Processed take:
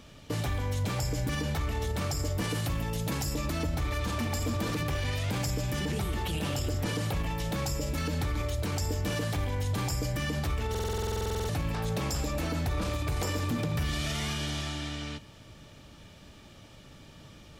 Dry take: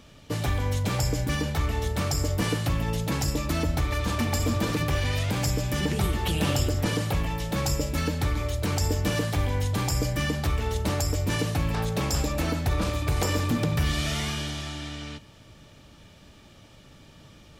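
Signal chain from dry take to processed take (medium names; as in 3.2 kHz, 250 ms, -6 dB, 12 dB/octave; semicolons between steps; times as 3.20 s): 2.51–3.35 s: treble shelf 8.5 kHz +6.5 dB; peak limiter -23 dBFS, peak gain reduction 9.5 dB; buffer glitch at 10.70 s, samples 2048, times 16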